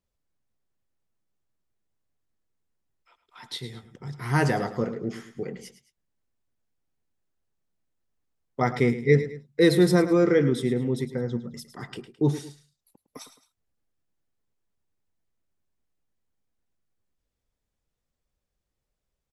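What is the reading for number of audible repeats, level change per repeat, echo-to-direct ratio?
2, -8.5 dB, -12.5 dB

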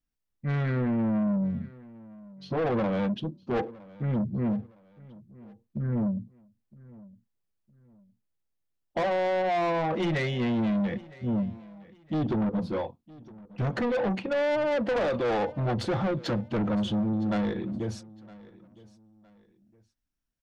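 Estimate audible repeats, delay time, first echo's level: 2, 962 ms, -21.5 dB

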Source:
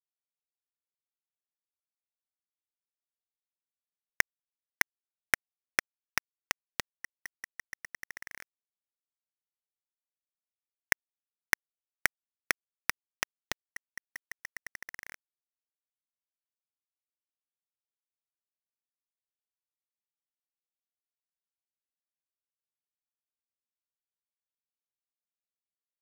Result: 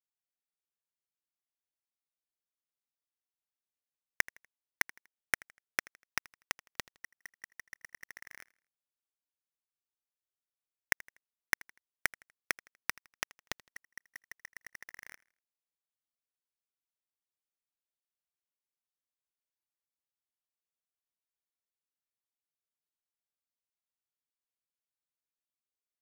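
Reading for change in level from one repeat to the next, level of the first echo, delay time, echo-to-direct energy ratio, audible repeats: -8.5 dB, -22.0 dB, 81 ms, -21.5 dB, 2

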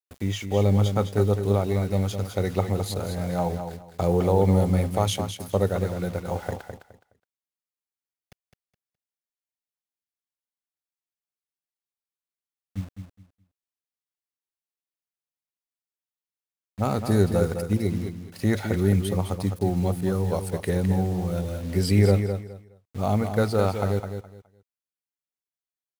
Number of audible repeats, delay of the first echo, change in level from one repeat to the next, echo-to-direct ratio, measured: 3, 209 ms, -13.0 dB, -8.0 dB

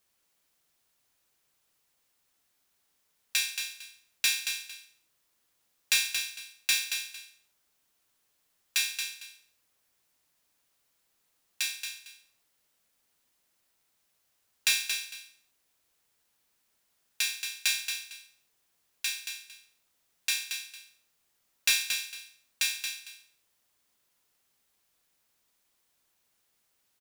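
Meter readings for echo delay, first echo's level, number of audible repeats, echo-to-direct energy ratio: 227 ms, -7.0 dB, 2, -7.0 dB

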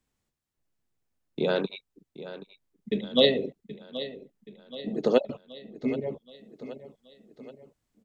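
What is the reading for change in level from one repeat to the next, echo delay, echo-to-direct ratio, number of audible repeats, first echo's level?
-5.5 dB, 776 ms, -13.0 dB, 4, -14.5 dB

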